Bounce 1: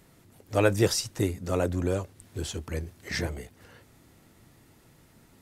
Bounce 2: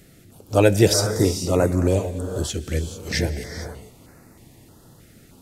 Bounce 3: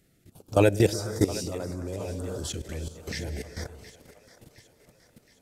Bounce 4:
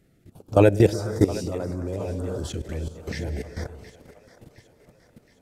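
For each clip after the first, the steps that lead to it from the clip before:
reverb whose tail is shaped and stops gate 480 ms rising, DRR 7.5 dB; notch on a step sequencer 3.2 Hz 980–3,200 Hz; level +8 dB
output level in coarse steps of 16 dB; echo with a time of its own for lows and highs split 460 Hz, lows 125 ms, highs 717 ms, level −15.5 dB; level −1.5 dB
high-shelf EQ 2,500 Hz −10 dB; level +4.5 dB

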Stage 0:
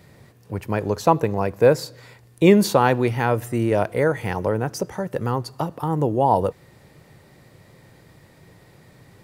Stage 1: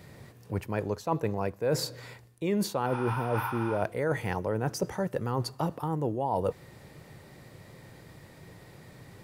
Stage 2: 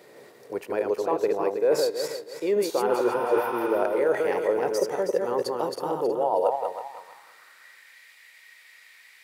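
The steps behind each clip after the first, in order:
healed spectral selection 0:02.89–0:03.77, 770–11,000 Hz after; reversed playback; downward compressor 10 to 1, threshold −25 dBFS, peak gain reduction 17 dB; reversed playback
feedback delay that plays each chunk backwards 160 ms, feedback 53%, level −3 dB; high-pass filter sweep 420 Hz → 2,100 Hz, 0:06.08–0:07.99

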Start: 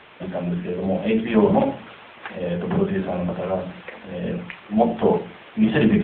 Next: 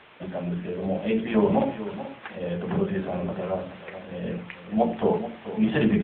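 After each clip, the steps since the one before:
single-tap delay 432 ms −12.5 dB
level −4.5 dB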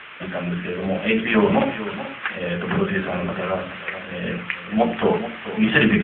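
flat-topped bell 1,900 Hz +11 dB
level +3.5 dB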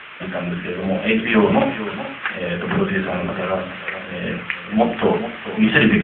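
double-tracking delay 37 ms −13.5 dB
level +2 dB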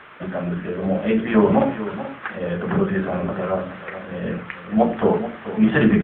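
parametric band 2,700 Hz −13.5 dB 1.2 octaves

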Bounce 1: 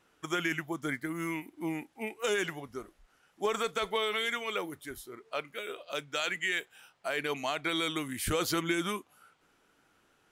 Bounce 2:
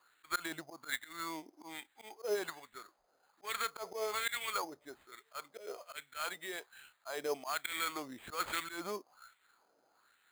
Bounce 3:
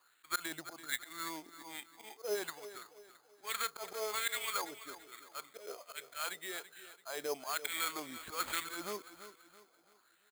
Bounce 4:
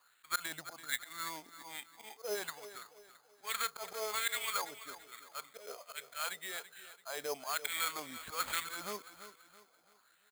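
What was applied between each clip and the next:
auto-filter band-pass sine 1.2 Hz 570–2,000 Hz; volume swells 109 ms; sample-rate reduction 5,600 Hz, jitter 0%; level +4 dB
high-shelf EQ 3,900 Hz +6.5 dB; repeating echo 335 ms, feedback 39%, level −13.5 dB; level −2 dB
parametric band 340 Hz −9.5 dB 0.45 octaves; level +1 dB

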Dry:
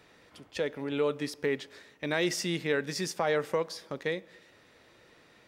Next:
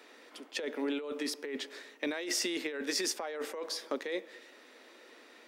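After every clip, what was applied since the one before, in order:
Chebyshev high-pass filter 240 Hz, order 5
compressor whose output falls as the input rises −35 dBFS, ratio −1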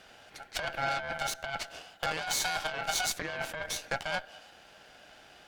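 ring modulation 1,100 Hz
harmonic generator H 8 −17 dB, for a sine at −20.5 dBFS
level +4 dB

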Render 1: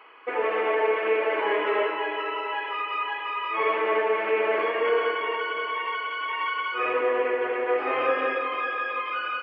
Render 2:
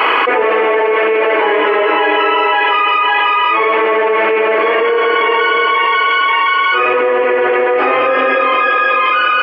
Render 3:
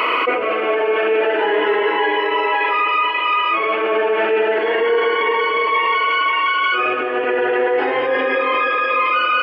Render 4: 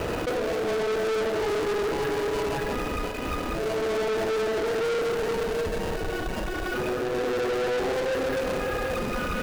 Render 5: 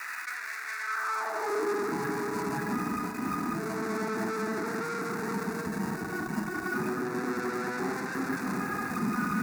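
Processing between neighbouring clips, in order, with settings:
envelope flattener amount 100%; level +7.5 dB
brickwall limiter −7 dBFS, peak gain reduction 5.5 dB; phaser whose notches keep moving one way rising 0.33 Hz
running median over 41 samples; hard clipping −24.5 dBFS, distortion −7 dB
high-pass filter sweep 1,900 Hz → 200 Hz, 0:00.80–0:01.97; phaser with its sweep stopped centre 1,300 Hz, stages 4

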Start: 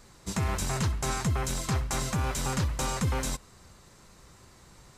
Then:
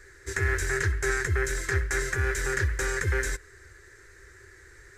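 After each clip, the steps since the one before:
drawn EQ curve 100 Hz 0 dB, 200 Hz −27 dB, 390 Hz +7 dB, 650 Hz −14 dB, 1,100 Hz −11 dB, 1,700 Hz +15 dB, 2,800 Hz −8 dB, 4,500 Hz −7 dB, 6,700 Hz −2 dB, 11,000 Hz −6 dB
level +2.5 dB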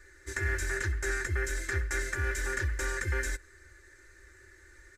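comb filter 3.4 ms, depth 78%
level −6.5 dB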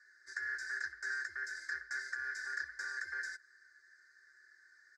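pair of resonant band-passes 2,800 Hz, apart 1.6 octaves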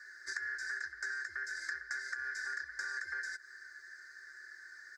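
downward compressor 12 to 1, threshold −48 dBFS, peak gain reduction 15 dB
level +11.5 dB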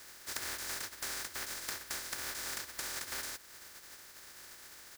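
compressing power law on the bin magnitudes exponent 0.18

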